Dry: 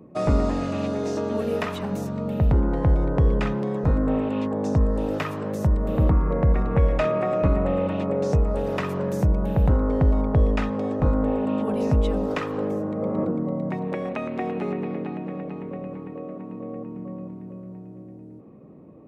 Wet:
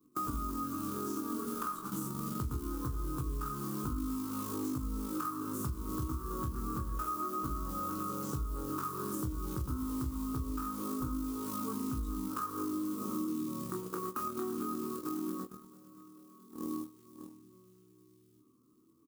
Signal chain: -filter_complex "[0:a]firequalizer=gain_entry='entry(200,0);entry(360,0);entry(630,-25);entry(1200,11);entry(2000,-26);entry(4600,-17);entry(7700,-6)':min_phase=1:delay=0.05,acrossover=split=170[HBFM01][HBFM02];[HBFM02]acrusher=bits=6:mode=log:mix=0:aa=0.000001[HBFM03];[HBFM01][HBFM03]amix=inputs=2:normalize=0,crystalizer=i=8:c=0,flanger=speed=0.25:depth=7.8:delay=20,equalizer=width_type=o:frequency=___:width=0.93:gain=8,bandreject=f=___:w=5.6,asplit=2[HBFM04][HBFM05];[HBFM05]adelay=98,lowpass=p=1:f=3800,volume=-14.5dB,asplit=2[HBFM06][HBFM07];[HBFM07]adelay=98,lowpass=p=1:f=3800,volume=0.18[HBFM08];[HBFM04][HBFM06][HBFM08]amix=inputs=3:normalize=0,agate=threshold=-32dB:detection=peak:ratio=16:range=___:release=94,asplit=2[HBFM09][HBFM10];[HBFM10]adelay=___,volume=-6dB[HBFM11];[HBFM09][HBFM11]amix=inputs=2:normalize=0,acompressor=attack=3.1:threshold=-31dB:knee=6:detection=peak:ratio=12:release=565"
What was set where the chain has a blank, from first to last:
310, 180, -22dB, 16